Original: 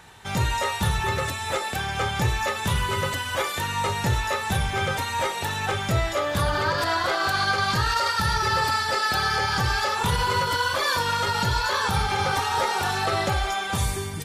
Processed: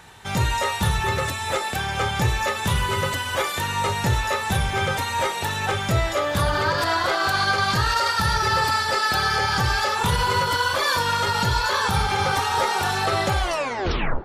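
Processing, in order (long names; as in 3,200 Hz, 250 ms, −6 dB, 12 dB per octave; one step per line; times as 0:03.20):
turntable brake at the end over 0.85 s
delay with a band-pass on its return 433 ms, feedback 83%, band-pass 720 Hz, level −21 dB
level +2 dB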